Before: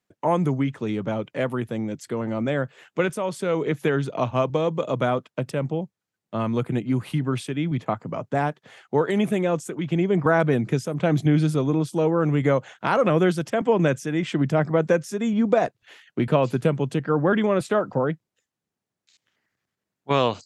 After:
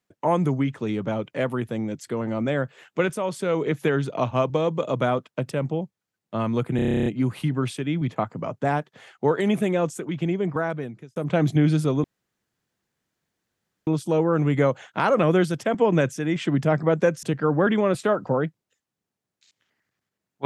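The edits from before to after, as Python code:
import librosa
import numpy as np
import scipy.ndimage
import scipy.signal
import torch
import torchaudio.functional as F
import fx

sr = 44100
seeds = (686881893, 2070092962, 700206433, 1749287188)

y = fx.edit(x, sr, fx.stutter(start_s=6.76, slice_s=0.03, count=11),
    fx.fade_out_span(start_s=9.69, length_s=1.17),
    fx.insert_room_tone(at_s=11.74, length_s=1.83),
    fx.cut(start_s=15.1, length_s=1.79), tone=tone)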